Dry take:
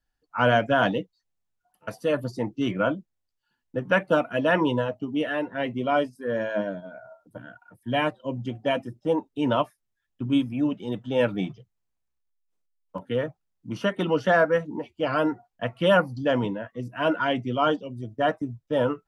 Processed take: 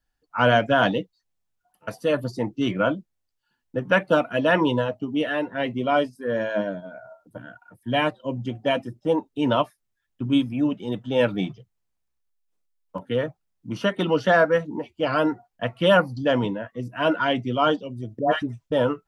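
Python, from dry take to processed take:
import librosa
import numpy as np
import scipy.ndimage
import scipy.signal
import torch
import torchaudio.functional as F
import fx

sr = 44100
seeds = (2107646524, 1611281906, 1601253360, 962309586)

y = fx.dispersion(x, sr, late='highs', ms=116.0, hz=1000.0, at=(18.19, 18.72))
y = fx.dynamic_eq(y, sr, hz=4100.0, q=2.1, threshold_db=-49.0, ratio=4.0, max_db=5)
y = F.gain(torch.from_numpy(y), 2.0).numpy()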